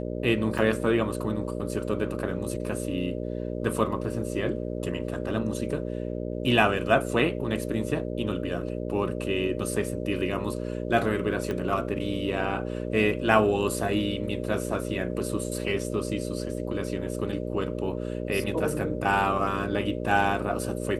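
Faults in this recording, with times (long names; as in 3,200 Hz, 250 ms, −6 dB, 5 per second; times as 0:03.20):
mains buzz 60 Hz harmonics 10 −32 dBFS
0:00.58: drop-out 4.8 ms
0:11.51: click −19 dBFS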